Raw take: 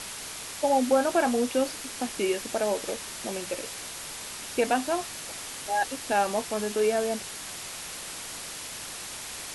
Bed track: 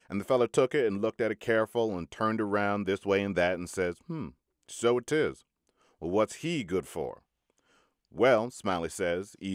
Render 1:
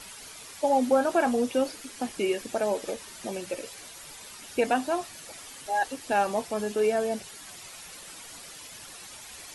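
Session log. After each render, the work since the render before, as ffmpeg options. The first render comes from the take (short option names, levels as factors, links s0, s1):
-af "afftdn=nr=10:nf=-39"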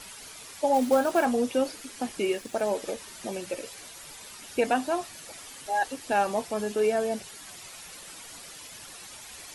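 -filter_complex "[0:a]asettb=1/sr,asplit=3[s0][s1][s2];[s0]atrim=end=0.744[s3];[s1]atrim=start=0.74:end=1.25,asetpts=PTS-STARTPTS,afade=t=in:d=0.004:c=qsin,afade=t=out:st=0.506:d=0.004:c=qsin,acrusher=bits=5:mode=log:mix=0:aa=0.000001[s4];[s2]atrim=start=1.246[s5];[s3][s4]acrossfade=d=0.004:c1=hsin:c2=qsin[s6];[s6][s5]acrossfade=d=0.004:c1=qsin:c2=hsin,asettb=1/sr,asplit=3[s7][s8][s9];[s7]atrim=end=2.234[s10];[s8]atrim=start=2.23:end=2.75,asetpts=PTS-STARTPTS,afade=t=in:d=0.004:c=qsin,afade=t=out:st=0.516:d=0.004:c=qsin,aeval=exprs='sgn(val(0))*max(abs(val(0))-0.00282,0)':c=same[s11];[s9]atrim=start=2.746[s12];[s10][s11]acrossfade=d=0.004:c1=hsin:c2=qsin[s13];[s13][s12]acrossfade=d=0.004:c1=qsin:c2=hsin"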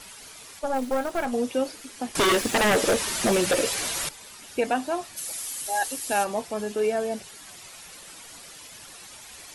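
-filter_complex "[0:a]asettb=1/sr,asplit=3[s0][s1][s2];[s0]atrim=end=0.594[s3];[s1]atrim=start=0.59:end=1.33,asetpts=PTS-STARTPTS,afade=t=in:d=0.004:c=qsin,afade=t=out:st=0.736:d=0.004:c=qsin,aeval=exprs='(tanh(7.94*val(0)+0.7)-tanh(0.7))/7.94':c=same[s4];[s2]atrim=start=1.326[s5];[s3][s4]acrossfade=d=0.004:c1=hsin:c2=qsin[s6];[s6][s5]acrossfade=d=0.004:c1=qsin:c2=hsin,asettb=1/sr,asplit=3[s7][s8][s9];[s7]atrim=end=2.154[s10];[s8]atrim=start=2.15:end=4.09,asetpts=PTS-STARTPTS,afade=t=in:d=0.004:c=qsin,afade=t=out:st=1.936:d=0.004:c=qsin,aeval=exprs='0.15*sin(PI/2*3.98*val(0)/0.15)':c=same[s11];[s9]atrim=start=4.086[s12];[s10][s11]acrossfade=d=0.004:c1=hsin:c2=qsin[s13];[s13][s12]acrossfade=d=0.004:c1=qsin:c2=hsin,asplit=3[s14][s15][s16];[s14]afade=t=out:st=5.16:d=0.02[s17];[s15]aemphasis=mode=production:type=75fm,afade=t=in:st=5.16:d=0.02,afade=t=out:st=6.23:d=0.02[s18];[s16]afade=t=in:st=6.23:d=0.02[s19];[s17][s18][s19]amix=inputs=3:normalize=0"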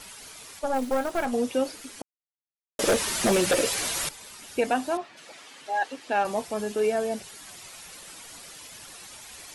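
-filter_complex "[0:a]asettb=1/sr,asplit=3[s0][s1][s2];[s0]atrim=end=4.974[s3];[s1]atrim=start=4.97:end=6.25,asetpts=PTS-STARTPTS,afade=t=in:d=0.004:c=qsin,afade=t=out:st=1.276:d=0.004:c=qsin,highpass=200,lowpass=2800[s4];[s2]atrim=start=6.246[s5];[s3][s4]acrossfade=d=0.004:c1=hsin:c2=qsin[s6];[s6][s5]acrossfade=d=0.004:c1=qsin:c2=hsin,asplit=3[s7][s8][s9];[s7]atrim=end=2.02,asetpts=PTS-STARTPTS,afade=t=out:st=2.016:d=0.004:c=hsin[s10];[s8]atrim=start=2.02:end=2.79,asetpts=PTS-STARTPTS,volume=0[s11];[s9]atrim=start=2.79,asetpts=PTS-STARTPTS,afade=t=in:d=0.004:c=hsin[s12];[s10][s11][s12]concat=n=3:v=0:a=1"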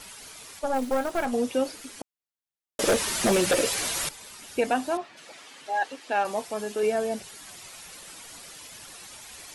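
-filter_complex "[0:a]asettb=1/sr,asplit=3[s0][s1][s2];[s0]atrim=end=5.924[s3];[s1]atrim=start=5.92:end=6.83,asetpts=PTS-STARTPTS,afade=t=in:d=0.004:c=qsin,afade=t=out:st=0.906:d=0.004:c=qsin,lowshelf=f=190:g=-10[s4];[s2]atrim=start=6.826[s5];[s3][s4]acrossfade=d=0.004:c1=hsin:c2=qsin[s6];[s6][s5]acrossfade=d=0.004:c1=qsin:c2=hsin"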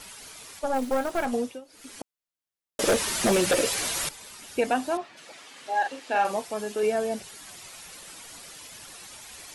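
-filter_complex "[0:a]asettb=1/sr,asplit=3[s0][s1][s2];[s0]atrim=end=5.524[s3];[s1]atrim=start=5.52:end=6.37,asetpts=PTS-STARTPTS,afade=t=in:d=0.004:c=qsin,afade=t=out:st=0.846:d=0.004:c=qsin,asplit=2[s4][s5];[s5]adelay=41,volume=0.562[s6];[s4][s6]amix=inputs=2:normalize=0,atrim=end_sample=37485[s7];[s2]atrim=start=6.366[s8];[s3][s7]acrossfade=d=0.004:c1=hsin:c2=qsin[s9];[s9][s8]acrossfade=d=0.004:c1=qsin:c2=hsin,asplit=3[s10][s11][s12];[s10]atrim=end=1.61,asetpts=PTS-STARTPTS,afade=t=out:st=1.34:d=0.27:silence=0.0794328[s13];[s11]atrim=start=1.61:end=1.68,asetpts=PTS-STARTPTS,volume=0.0794[s14];[s12]atrim=start=1.68,asetpts=PTS-STARTPTS,afade=t=in:d=0.27:silence=0.0794328[s15];[s13][s14][s15]concat=n=3:v=0:a=1"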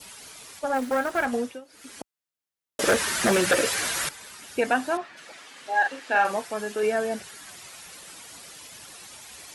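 -af "highpass=52,adynamicequalizer=threshold=0.00562:dfrequency=1600:dqfactor=1.8:tfrequency=1600:tqfactor=1.8:attack=5:release=100:ratio=0.375:range=4:mode=boostabove:tftype=bell"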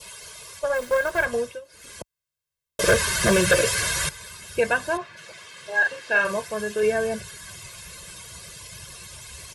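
-af "asubboost=boost=4:cutoff=240,aecho=1:1:1.9:0.95"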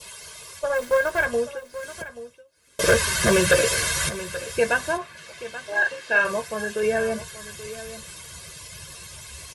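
-filter_complex "[0:a]asplit=2[s0][s1];[s1]adelay=13,volume=0.282[s2];[s0][s2]amix=inputs=2:normalize=0,aecho=1:1:831:0.188"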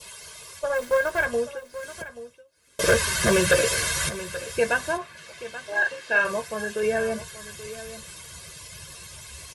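-af "volume=0.841"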